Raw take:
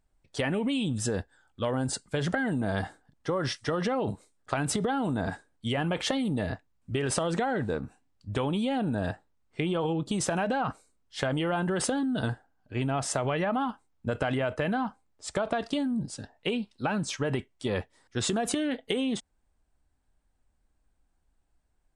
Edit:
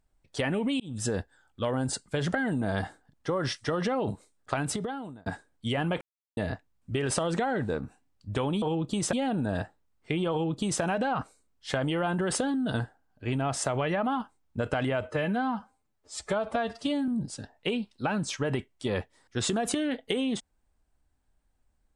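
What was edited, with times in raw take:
0:00.80–0:01.06: fade in
0:04.53–0:05.26: fade out
0:06.01–0:06.37: silence
0:09.80–0:10.31: duplicate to 0:08.62
0:14.50–0:15.88: time-stretch 1.5×

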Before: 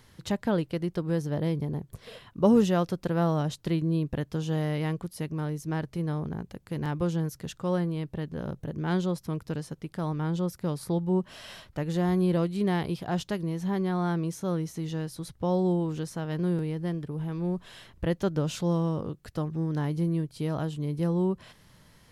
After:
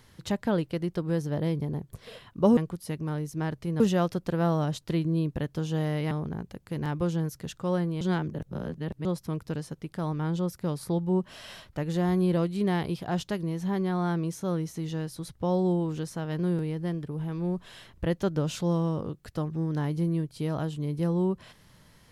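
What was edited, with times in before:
0:04.88–0:06.11: move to 0:02.57
0:08.01–0:09.05: reverse

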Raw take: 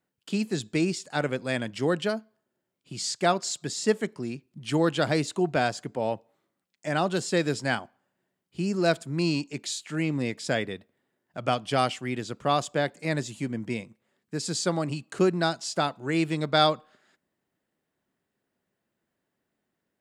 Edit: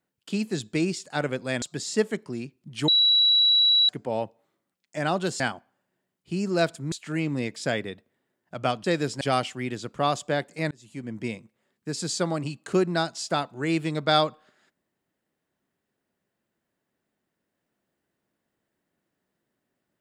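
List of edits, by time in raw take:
0:01.62–0:03.52: remove
0:04.78–0:05.79: beep over 3,910 Hz −16 dBFS
0:07.30–0:07.67: move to 0:11.67
0:09.19–0:09.75: remove
0:13.17–0:13.71: fade in

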